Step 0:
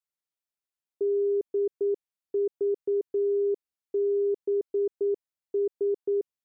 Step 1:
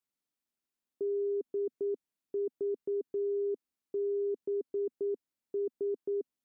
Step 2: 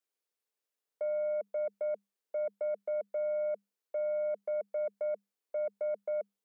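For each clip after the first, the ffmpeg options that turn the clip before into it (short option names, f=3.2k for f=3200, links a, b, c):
-af "equalizer=f=250:t=o:w=0.99:g=11.5,alimiter=level_in=4.5dB:limit=-24dB:level=0:latency=1:release=25,volume=-4.5dB"
-af "aeval=exprs='0.0398*(cos(1*acos(clip(val(0)/0.0398,-1,1)))-cos(1*PI/2))+0.000355*(cos(2*acos(clip(val(0)/0.0398,-1,1)))-cos(2*PI/2))+0.00282*(cos(3*acos(clip(val(0)/0.0398,-1,1)))-cos(3*PI/2))+0.00178*(cos(5*acos(clip(val(0)/0.0398,-1,1)))-cos(5*PI/2))':c=same,afreqshift=200"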